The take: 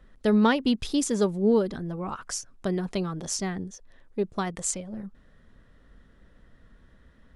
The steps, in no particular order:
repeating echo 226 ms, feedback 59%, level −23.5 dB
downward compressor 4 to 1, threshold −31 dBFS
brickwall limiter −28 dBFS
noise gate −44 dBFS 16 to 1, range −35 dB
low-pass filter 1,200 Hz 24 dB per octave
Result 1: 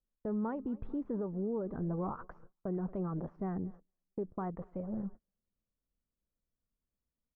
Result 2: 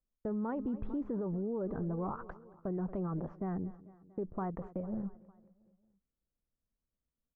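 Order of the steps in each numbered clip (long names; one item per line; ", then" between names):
downward compressor, then repeating echo, then brickwall limiter, then noise gate, then low-pass filter
low-pass filter, then noise gate, then repeating echo, then brickwall limiter, then downward compressor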